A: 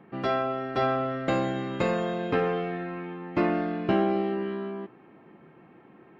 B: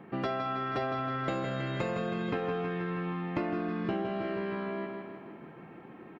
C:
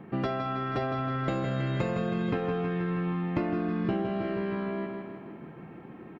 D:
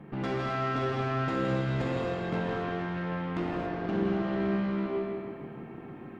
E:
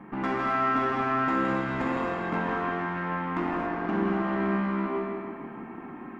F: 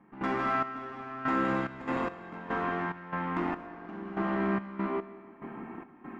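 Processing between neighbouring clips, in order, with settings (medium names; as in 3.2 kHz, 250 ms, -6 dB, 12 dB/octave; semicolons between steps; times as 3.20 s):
on a send: feedback delay 159 ms, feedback 52%, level -5.5 dB; on the sum: compression, threshold -33 dBFS, peak gain reduction 13 dB; trim +3 dB
bass shelf 240 Hz +8.5 dB
valve stage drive 31 dB, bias 0.6; reverberation, pre-delay 3 ms, DRR -2.5 dB
graphic EQ 125/250/500/1000/2000/4000 Hz -10/+8/-5/+10/+5/-6 dB
trance gate ".xx...xx.x..xx" 72 bpm -12 dB; trim -2 dB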